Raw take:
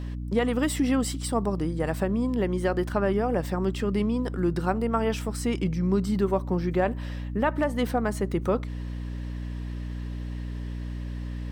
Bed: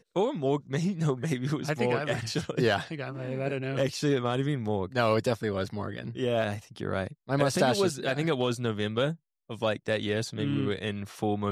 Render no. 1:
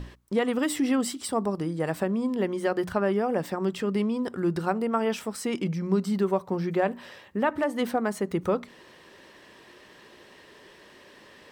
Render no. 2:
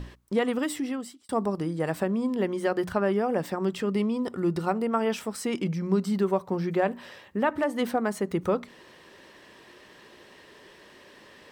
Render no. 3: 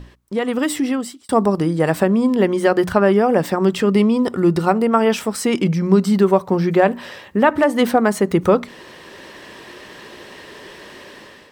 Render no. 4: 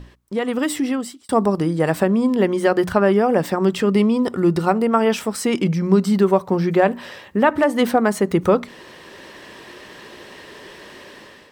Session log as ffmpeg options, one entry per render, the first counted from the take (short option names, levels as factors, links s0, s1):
-af "bandreject=f=60:t=h:w=6,bandreject=f=120:t=h:w=6,bandreject=f=180:t=h:w=6,bandreject=f=240:t=h:w=6,bandreject=f=300:t=h:w=6"
-filter_complex "[0:a]asettb=1/sr,asplit=3[s0][s1][s2];[s0]atrim=end=3.914[s3];[s1]atrim=start=3.91:end=4.72,asetpts=PTS-STARTPTS,afade=t=in:d=0.004:c=qsin,afade=t=out:st=0.806:d=0.004:c=qsin,asuperstop=centerf=1600:order=4:qfactor=7.2[s4];[s2]atrim=start=4.716[s5];[s3][s4]acrossfade=d=0.004:c1=hsin:c2=qsin[s6];[s6][s5]acrossfade=d=0.004:c1=qsin:c2=hsin,asplit=2[s7][s8];[s7]atrim=end=1.29,asetpts=PTS-STARTPTS,afade=t=out:st=0.45:d=0.84[s9];[s8]atrim=start=1.29,asetpts=PTS-STARTPTS,afade=t=in:d=0.004:c=hsin[s10];[s9][s10]concat=n=2:v=0:a=1"
-af "dynaudnorm=f=220:g=5:m=4.47"
-af "volume=0.841"